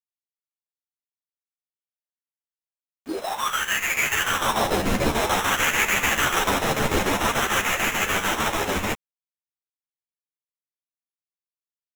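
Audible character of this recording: aliases and images of a low sample rate 4600 Hz, jitter 0%; chopped level 6.8 Hz, depth 60%, duty 70%; a quantiser's noise floor 8-bit, dither none; a shimmering, thickened sound

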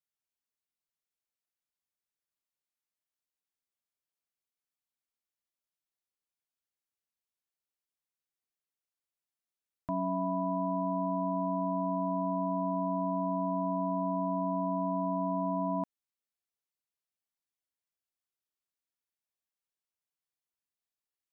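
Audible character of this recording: noise floor -94 dBFS; spectral tilt -1.5 dB/oct

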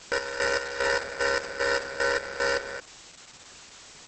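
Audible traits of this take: aliases and images of a low sample rate 3300 Hz, jitter 0%; chopped level 2.5 Hz, depth 65%, duty 45%; a quantiser's noise floor 8-bit, dither triangular; Opus

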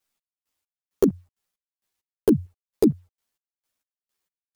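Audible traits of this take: chopped level 2.2 Hz, depth 65%, duty 40%; a quantiser's noise floor 12-bit, dither none; a shimmering, thickened sound

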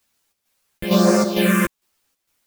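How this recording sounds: phasing stages 4, 1.1 Hz, lowest notch 690–3100 Hz; a quantiser's noise floor 12-bit, dither triangular; chopped level 2.2 Hz, depth 60%, duty 70%; a shimmering, thickened sound

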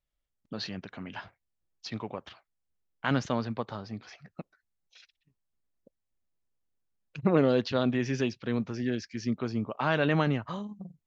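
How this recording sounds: noise floor -83 dBFS; spectral tilt -5.5 dB/oct

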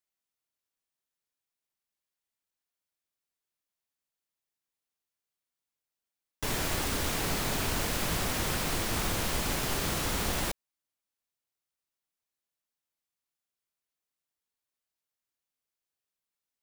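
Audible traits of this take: noise floor -90 dBFS; spectral tilt -3.0 dB/oct

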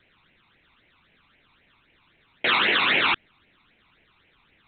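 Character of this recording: a quantiser's noise floor 10-bit, dither triangular; phasing stages 12, 3.8 Hz, lowest notch 520–1200 Hz; A-law

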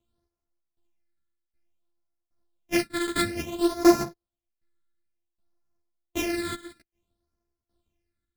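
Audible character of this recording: a buzz of ramps at a fixed pitch in blocks of 128 samples; phasing stages 8, 0.57 Hz, lowest notch 780–3100 Hz; tremolo saw down 1.3 Hz, depth 90%; a shimmering, thickened sound

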